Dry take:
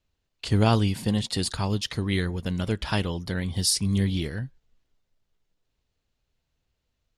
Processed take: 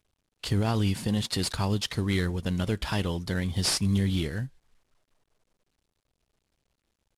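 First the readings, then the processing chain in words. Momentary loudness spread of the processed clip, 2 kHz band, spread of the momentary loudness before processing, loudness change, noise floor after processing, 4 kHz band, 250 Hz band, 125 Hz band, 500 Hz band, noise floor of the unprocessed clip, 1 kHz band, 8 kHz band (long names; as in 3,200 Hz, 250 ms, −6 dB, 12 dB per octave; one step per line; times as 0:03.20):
5 LU, −1.5 dB, 8 LU, −2.0 dB, −81 dBFS, −1.5 dB, −1.5 dB, −2.0 dB, −2.5 dB, −79 dBFS, −4.0 dB, −3.5 dB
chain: variable-slope delta modulation 64 kbit/s
brickwall limiter −16 dBFS, peak gain reduction 9 dB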